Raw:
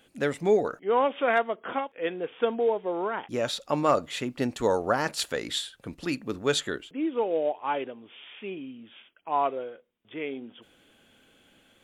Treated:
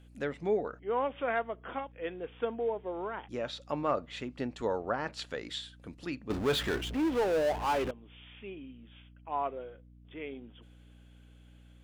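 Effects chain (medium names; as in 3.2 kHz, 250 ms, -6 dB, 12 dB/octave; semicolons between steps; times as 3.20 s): hum 60 Hz, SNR 19 dB; low-pass that closes with the level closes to 2.9 kHz, closed at -23 dBFS; 6.30–7.91 s: power-law waveshaper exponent 0.5; trim -7.5 dB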